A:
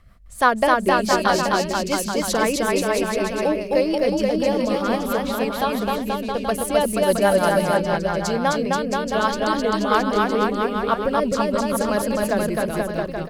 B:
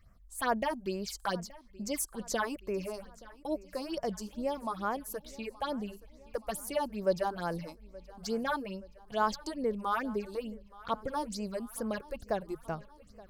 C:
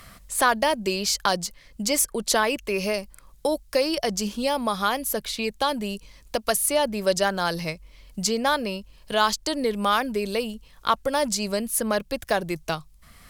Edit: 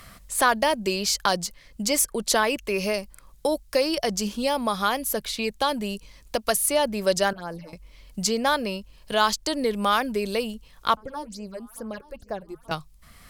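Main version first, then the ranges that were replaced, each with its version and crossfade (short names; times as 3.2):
C
7.33–7.73 from B
10.97–12.71 from B
not used: A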